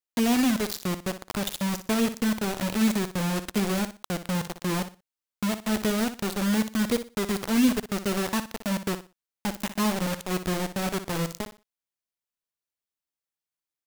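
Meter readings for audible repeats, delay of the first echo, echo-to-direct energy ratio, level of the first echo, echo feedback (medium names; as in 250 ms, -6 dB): 2, 60 ms, -11.0 dB, -11.5 dB, 24%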